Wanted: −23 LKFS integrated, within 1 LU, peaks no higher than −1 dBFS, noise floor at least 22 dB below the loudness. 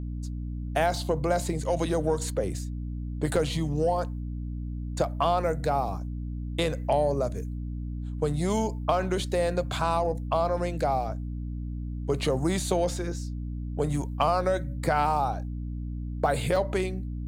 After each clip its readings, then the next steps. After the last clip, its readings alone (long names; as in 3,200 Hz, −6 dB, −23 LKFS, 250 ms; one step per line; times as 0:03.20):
number of dropouts 2; longest dropout 1.9 ms; mains hum 60 Hz; hum harmonics up to 300 Hz; level of the hum −31 dBFS; integrated loudness −28.5 LKFS; sample peak −10.5 dBFS; target loudness −23.0 LKFS
→ repair the gap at 0:03.36/0:16.56, 1.9 ms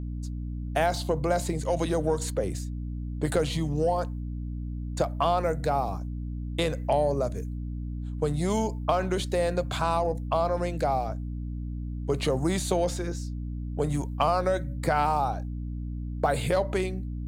number of dropouts 0; mains hum 60 Hz; hum harmonics up to 300 Hz; level of the hum −31 dBFS
→ hum removal 60 Hz, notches 5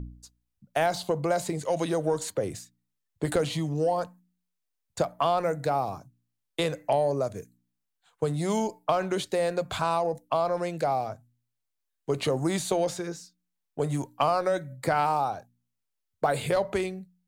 mains hum none found; integrated loudness −28.5 LKFS; sample peak −11.0 dBFS; target loudness −23.0 LKFS
→ level +5.5 dB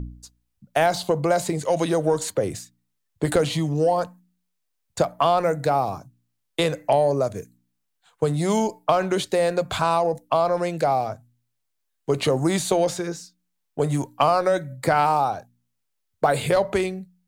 integrated loudness −23.0 LKFS; sample peak −5.5 dBFS; background noise floor −76 dBFS